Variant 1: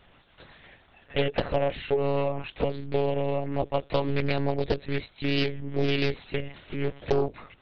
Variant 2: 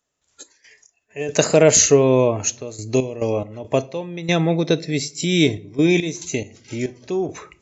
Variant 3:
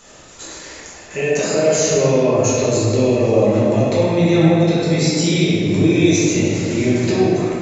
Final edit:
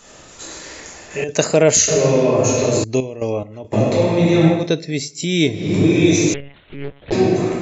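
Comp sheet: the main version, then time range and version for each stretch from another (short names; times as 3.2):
3
1.24–1.88 from 2
2.84–3.73 from 2
4.59–5.62 from 2, crossfade 0.24 s
6.34–7.12 from 1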